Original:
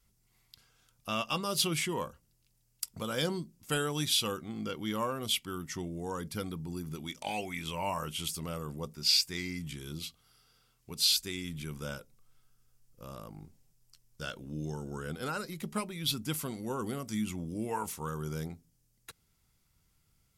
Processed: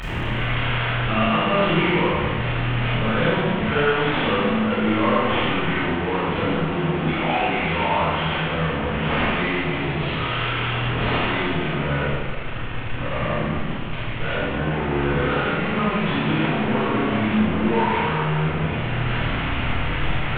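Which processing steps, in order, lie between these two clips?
delta modulation 16 kbps, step -30.5 dBFS; Schroeder reverb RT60 1.6 s, combs from 25 ms, DRR -9 dB; gain +4.5 dB

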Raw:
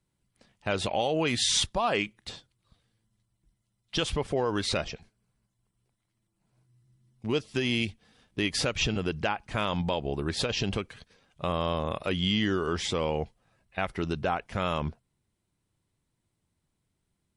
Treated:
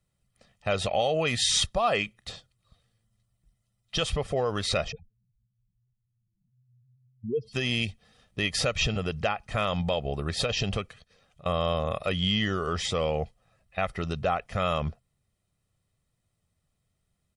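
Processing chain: 4.92–7.53 spectral contrast raised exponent 3.2; comb 1.6 ms, depth 55%; 10.91–11.46 compressor 8:1, threshold -51 dBFS, peak gain reduction 24 dB

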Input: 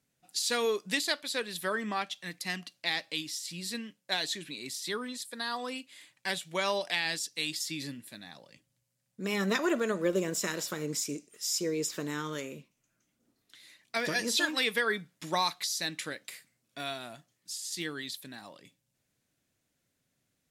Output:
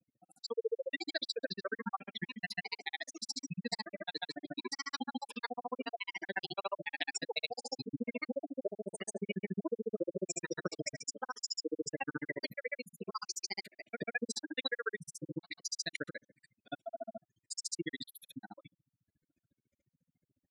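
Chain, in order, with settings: echoes that change speed 0.216 s, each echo +3 st, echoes 3, each echo -6 dB; spectral gate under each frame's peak -10 dB strong; compressor 5:1, threshold -37 dBFS, peak gain reduction 12 dB; grains 39 ms, grains 14/s, pitch spread up and down by 0 st; gain +7.5 dB

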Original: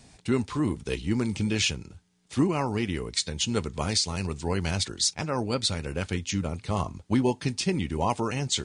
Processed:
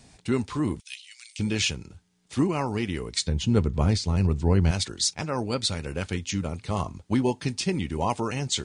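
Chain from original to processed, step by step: 0.8–1.39 inverse Chebyshev high-pass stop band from 420 Hz, stop band 80 dB; 3.27–4.71 tilt -3 dB/oct; short-mantissa float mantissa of 8-bit

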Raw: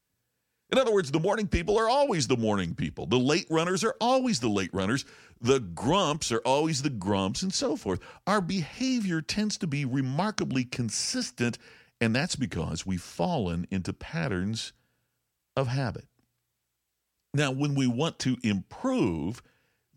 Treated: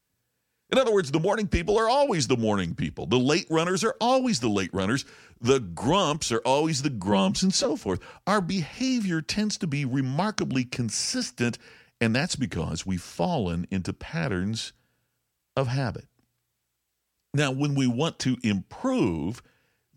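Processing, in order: 7.11–7.65 comb 5.4 ms, depth 93%; gain +2 dB

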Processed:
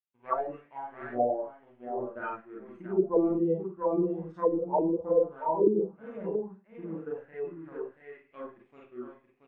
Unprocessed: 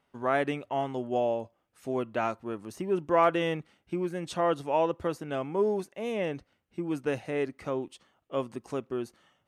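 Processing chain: power-law curve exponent 1.4; on a send: echo 0.679 s -5.5 dB; on the sum: Schroeder reverb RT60 0.38 s, combs from 33 ms, DRR -4 dB; spectral noise reduction 14 dB; envelope low-pass 310–2600 Hz down, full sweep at -20.5 dBFS; gain -5 dB

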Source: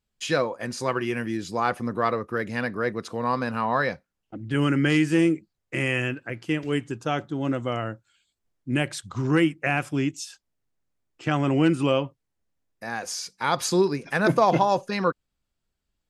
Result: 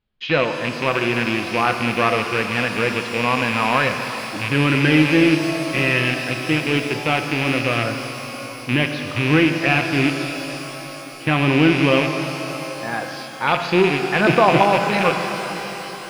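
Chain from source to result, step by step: rattling part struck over -33 dBFS, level -16 dBFS; inverse Chebyshev low-pass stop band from 7500 Hz, stop band 40 dB; shimmer reverb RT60 3.9 s, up +12 st, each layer -8 dB, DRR 5 dB; gain +4.5 dB

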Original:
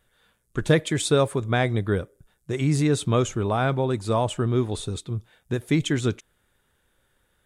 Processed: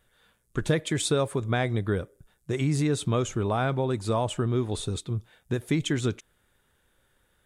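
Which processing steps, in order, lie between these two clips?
compressor 2:1, threshold -24 dBFS, peak gain reduction 6.5 dB

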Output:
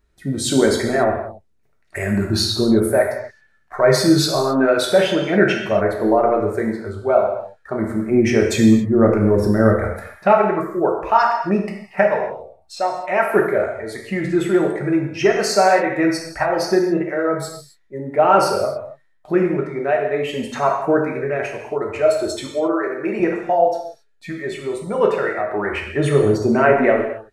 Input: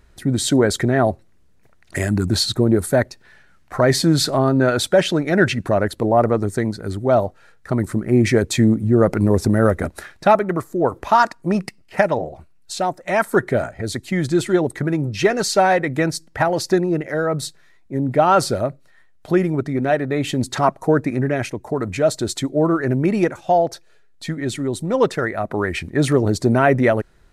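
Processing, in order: spectral noise reduction 12 dB; 22.46–23.2 HPF 400 Hz 12 dB/oct; non-linear reverb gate 0.3 s falling, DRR -0.5 dB; gain -2 dB

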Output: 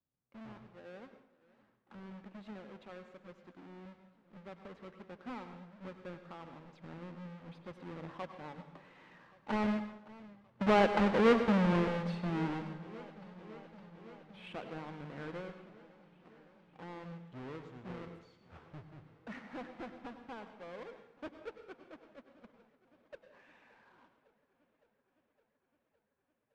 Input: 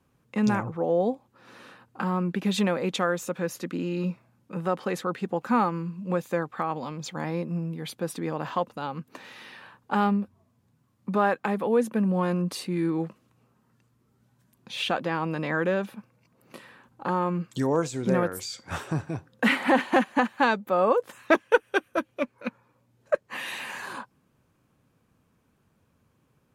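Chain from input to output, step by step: half-waves squared off; Doppler pass-by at 11.05, 15 m/s, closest 9.3 m; LPF 2500 Hz 12 dB/oct; plate-style reverb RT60 0.72 s, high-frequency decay 0.85×, pre-delay 85 ms, DRR 8.5 dB; warbling echo 0.562 s, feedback 75%, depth 97 cents, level -21 dB; gain -5.5 dB

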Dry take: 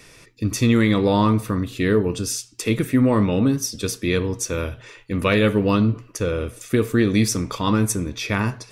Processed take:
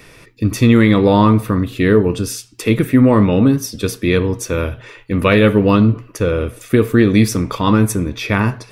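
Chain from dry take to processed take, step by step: bell 6700 Hz -8.5 dB 1.4 oct; gain +6.5 dB

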